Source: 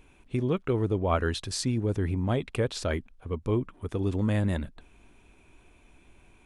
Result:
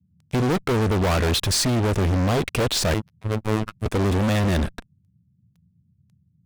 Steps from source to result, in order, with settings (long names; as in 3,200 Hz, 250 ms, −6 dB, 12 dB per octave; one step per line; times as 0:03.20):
fuzz pedal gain 39 dB, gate −45 dBFS
0:02.94–0:03.86: phases set to zero 108 Hz
noise in a band 75–190 Hz −56 dBFS
level −5.5 dB